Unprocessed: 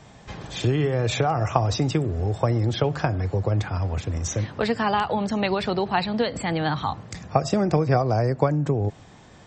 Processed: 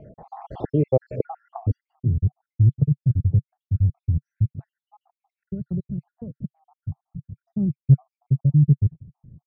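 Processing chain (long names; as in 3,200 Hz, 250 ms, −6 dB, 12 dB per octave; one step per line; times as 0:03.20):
time-frequency cells dropped at random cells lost 70%
0:06.11–0:07.43: low-pass filter 1,300 Hz
low-pass filter sweep 790 Hz → 140 Hz, 0:00.78–0:02.18
level +3.5 dB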